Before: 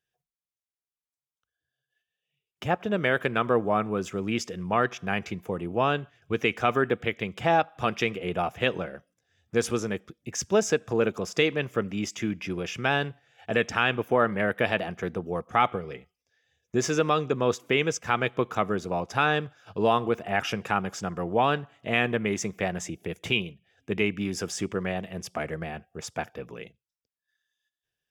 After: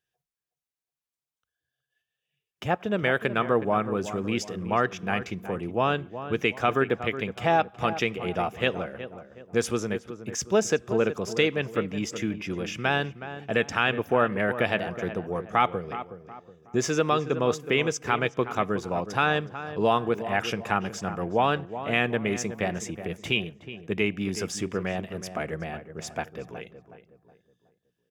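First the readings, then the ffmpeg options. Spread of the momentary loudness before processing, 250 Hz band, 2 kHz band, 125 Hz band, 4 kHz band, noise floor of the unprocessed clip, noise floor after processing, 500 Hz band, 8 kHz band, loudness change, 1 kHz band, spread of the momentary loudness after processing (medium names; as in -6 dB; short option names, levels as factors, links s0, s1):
11 LU, +0.5 dB, 0.0 dB, +0.5 dB, 0.0 dB, under -85 dBFS, under -85 dBFS, +0.5 dB, 0.0 dB, 0.0 dB, +0.5 dB, 11 LU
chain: -filter_complex "[0:a]asplit=2[s0][s1];[s1]adelay=369,lowpass=f=1500:p=1,volume=0.282,asplit=2[s2][s3];[s3]adelay=369,lowpass=f=1500:p=1,volume=0.4,asplit=2[s4][s5];[s5]adelay=369,lowpass=f=1500:p=1,volume=0.4,asplit=2[s6][s7];[s7]adelay=369,lowpass=f=1500:p=1,volume=0.4[s8];[s0][s2][s4][s6][s8]amix=inputs=5:normalize=0"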